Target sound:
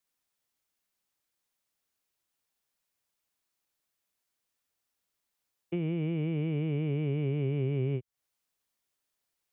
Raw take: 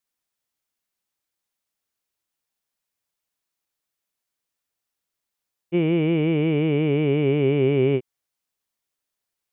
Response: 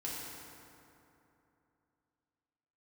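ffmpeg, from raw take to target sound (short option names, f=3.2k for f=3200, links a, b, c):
-filter_complex "[0:a]acrossover=split=130[a][b];[b]acompressor=threshold=-33dB:ratio=10[c];[a][c]amix=inputs=2:normalize=0"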